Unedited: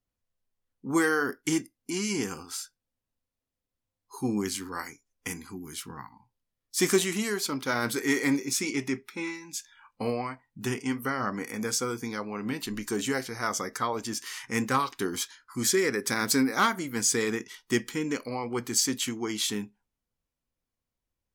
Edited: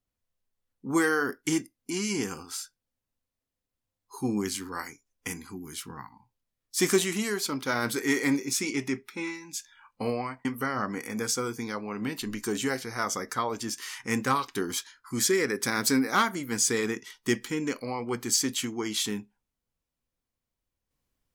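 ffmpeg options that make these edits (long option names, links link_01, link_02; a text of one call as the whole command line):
ffmpeg -i in.wav -filter_complex "[0:a]asplit=2[link_01][link_02];[link_01]atrim=end=10.452[link_03];[link_02]atrim=start=10.888[link_04];[link_03][link_04]acrossfade=duration=0.004:curve1=hsin:curve2=hsin" out.wav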